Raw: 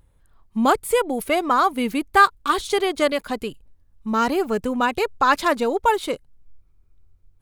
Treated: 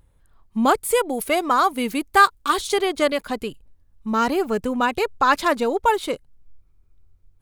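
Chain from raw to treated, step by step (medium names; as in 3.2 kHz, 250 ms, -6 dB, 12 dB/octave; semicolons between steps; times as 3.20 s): 0.75–2.74 s: tone controls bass -3 dB, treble +4 dB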